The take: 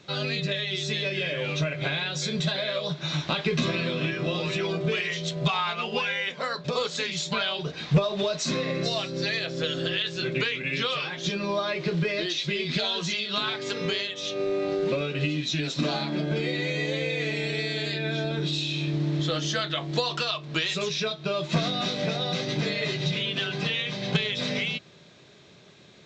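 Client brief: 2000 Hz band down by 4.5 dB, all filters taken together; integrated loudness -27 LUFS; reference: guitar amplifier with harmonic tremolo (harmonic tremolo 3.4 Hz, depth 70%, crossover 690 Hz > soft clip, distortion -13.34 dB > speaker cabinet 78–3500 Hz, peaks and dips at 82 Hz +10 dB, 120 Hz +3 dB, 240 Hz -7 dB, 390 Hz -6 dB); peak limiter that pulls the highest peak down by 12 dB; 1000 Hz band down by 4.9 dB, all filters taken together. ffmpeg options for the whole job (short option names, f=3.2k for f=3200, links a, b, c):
-filter_complex "[0:a]equalizer=f=1k:t=o:g=-5,equalizer=f=2k:t=o:g=-4.5,alimiter=level_in=1dB:limit=-24dB:level=0:latency=1,volume=-1dB,acrossover=split=690[a][b];[a]aeval=exprs='val(0)*(1-0.7/2+0.7/2*cos(2*PI*3.4*n/s))':c=same[c];[b]aeval=exprs='val(0)*(1-0.7/2-0.7/2*cos(2*PI*3.4*n/s))':c=same[d];[c][d]amix=inputs=2:normalize=0,asoftclip=threshold=-34dB,highpass=78,equalizer=f=82:t=q:w=4:g=10,equalizer=f=120:t=q:w=4:g=3,equalizer=f=240:t=q:w=4:g=-7,equalizer=f=390:t=q:w=4:g=-6,lowpass=f=3.5k:w=0.5412,lowpass=f=3.5k:w=1.3066,volume=14dB"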